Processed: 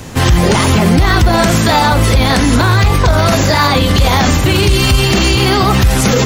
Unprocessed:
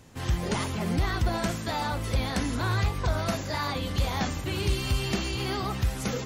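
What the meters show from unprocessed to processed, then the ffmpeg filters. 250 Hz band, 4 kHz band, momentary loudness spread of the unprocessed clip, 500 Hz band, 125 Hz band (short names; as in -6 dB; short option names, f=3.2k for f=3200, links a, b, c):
+18.5 dB, +19.0 dB, 3 LU, +19.0 dB, +18.0 dB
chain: -filter_complex "[0:a]acrossover=split=310|1700|2600[a][b][c][d];[c]acrusher=bits=3:mode=log:mix=0:aa=0.000001[e];[a][b][e][d]amix=inputs=4:normalize=0,alimiter=level_in=25dB:limit=-1dB:release=50:level=0:latency=1,volume=-1dB"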